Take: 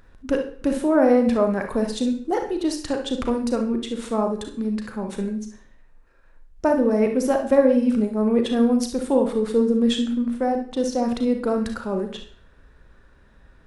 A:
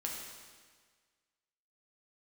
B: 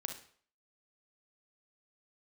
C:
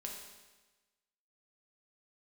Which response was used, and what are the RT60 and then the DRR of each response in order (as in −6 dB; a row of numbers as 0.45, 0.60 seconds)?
B; 1.6, 0.55, 1.2 seconds; −2.0, 4.5, −1.0 decibels